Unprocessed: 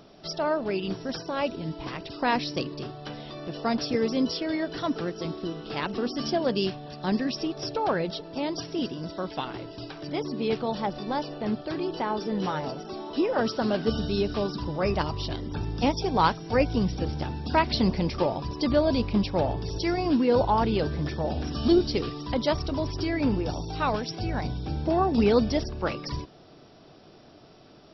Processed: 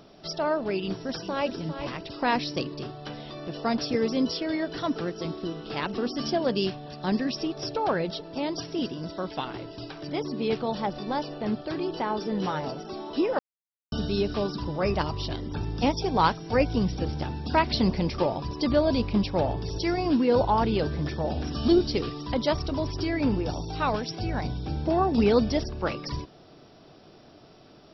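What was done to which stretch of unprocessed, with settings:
0:00.82–0:01.53: delay throw 400 ms, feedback 20%, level −9.5 dB
0:13.39–0:13.92: silence

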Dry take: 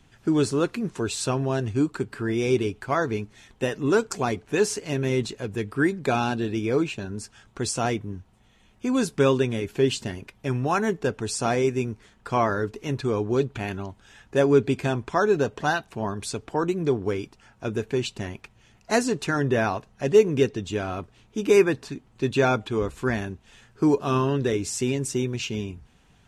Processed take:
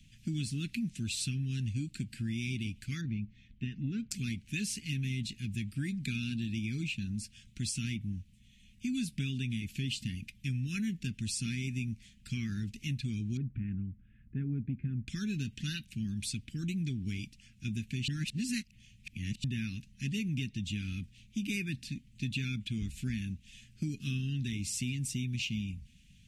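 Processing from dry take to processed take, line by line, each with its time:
0:03.01–0:04.11: head-to-tape spacing loss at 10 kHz 37 dB
0:13.37–0:15.08: low-pass filter 1,400 Hz 24 dB per octave
0:18.08–0:19.44: reverse
whole clip: elliptic band-stop filter 220–2,400 Hz, stop band 60 dB; dynamic equaliser 6,700 Hz, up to −6 dB, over −51 dBFS, Q 1.6; downward compressor, threshold −31 dBFS

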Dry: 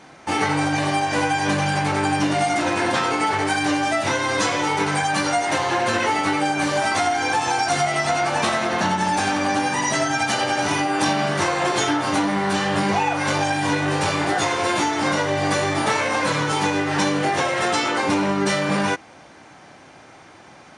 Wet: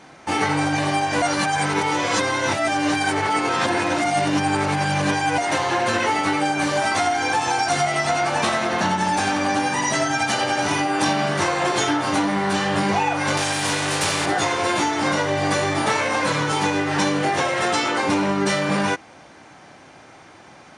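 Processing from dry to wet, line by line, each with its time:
0:01.22–0:05.38: reverse
0:13.37–0:14.26: every bin compressed towards the loudest bin 2 to 1

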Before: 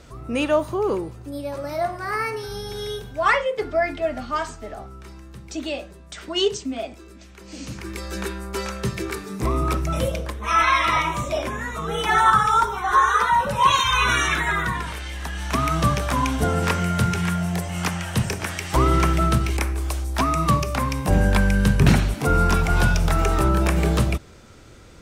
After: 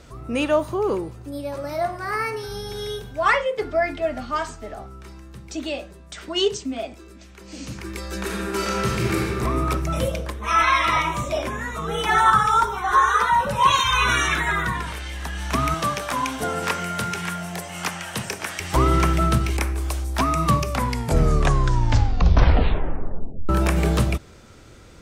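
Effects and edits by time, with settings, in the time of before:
0:08.22–0:09.24: thrown reverb, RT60 2.2 s, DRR −4.5 dB
0:15.74–0:18.60: high-pass filter 430 Hz 6 dB per octave
0:20.69: tape stop 2.80 s

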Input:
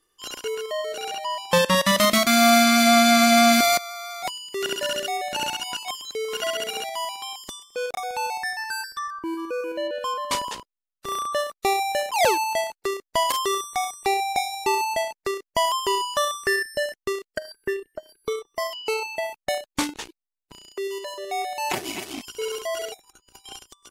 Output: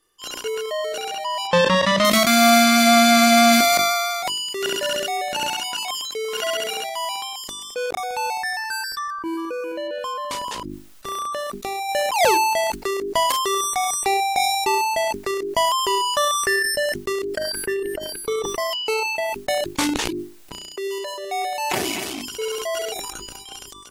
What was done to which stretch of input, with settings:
0:01.47–0:02.05: high-frequency loss of the air 110 metres
0:05.48–0:07.11: low-shelf EQ 170 Hz −7.5 dB
0:09.35–0:11.89: downward compressor, threshold −27 dBFS
whole clip: mains-hum notches 50/100/150/200/250/300/350/400 Hz; level that may fall only so fast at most 22 dB per second; level +2 dB

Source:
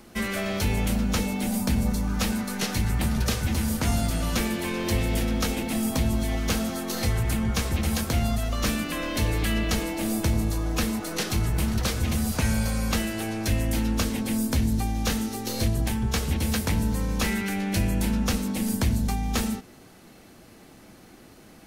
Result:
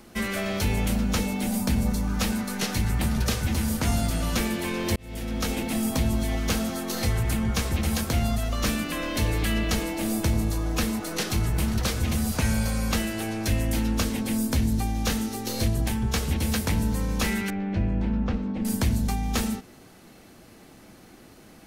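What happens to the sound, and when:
0:04.96–0:05.55: fade in
0:17.50–0:18.65: head-to-tape spacing loss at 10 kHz 40 dB

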